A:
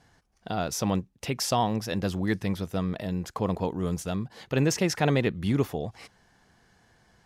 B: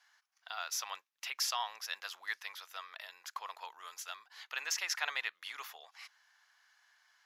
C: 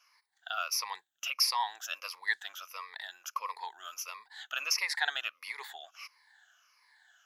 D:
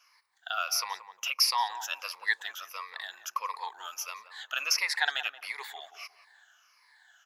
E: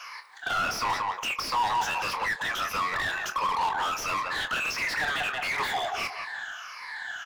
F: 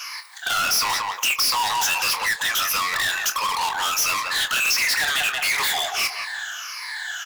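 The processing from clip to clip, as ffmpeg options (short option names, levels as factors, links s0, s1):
-af "highpass=f=1100:w=0.5412,highpass=f=1100:w=1.3066,equalizer=f=8700:t=o:w=0.22:g=-15,volume=0.75"
-af "afftfilt=real='re*pow(10,18/40*sin(2*PI*(0.9*log(max(b,1)*sr/1024/100)/log(2)-(-1.5)*(pts-256)/sr)))':imag='im*pow(10,18/40*sin(2*PI*(0.9*log(max(b,1)*sr/1024/100)/log(2)-(-1.5)*(pts-256)/sr)))':win_size=1024:overlap=0.75"
-filter_complex "[0:a]asplit=2[s0][s1];[s1]adelay=178,lowpass=f=950:p=1,volume=0.355,asplit=2[s2][s3];[s3]adelay=178,lowpass=f=950:p=1,volume=0.32,asplit=2[s4][s5];[s5]adelay=178,lowpass=f=950:p=1,volume=0.32,asplit=2[s6][s7];[s7]adelay=178,lowpass=f=950:p=1,volume=0.32[s8];[s0][s2][s4][s6][s8]amix=inputs=5:normalize=0,volume=1.41"
-filter_complex "[0:a]acompressor=threshold=0.0282:ratio=6,asplit=2[s0][s1];[s1]highpass=f=720:p=1,volume=56.2,asoftclip=type=tanh:threshold=0.126[s2];[s0][s2]amix=inputs=2:normalize=0,lowpass=f=1600:p=1,volume=0.501,asplit=2[s3][s4];[s4]adelay=26,volume=0.316[s5];[s3][s5]amix=inputs=2:normalize=0"
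-af "crystalizer=i=7.5:c=0,volume=0.841"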